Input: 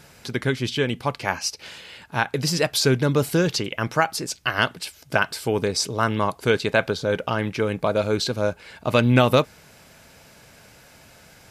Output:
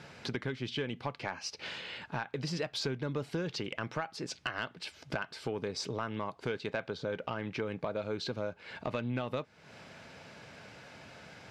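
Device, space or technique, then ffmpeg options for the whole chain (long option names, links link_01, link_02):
AM radio: -af "highpass=100,lowpass=4100,acompressor=threshold=-33dB:ratio=5,asoftclip=type=tanh:threshold=-21dB"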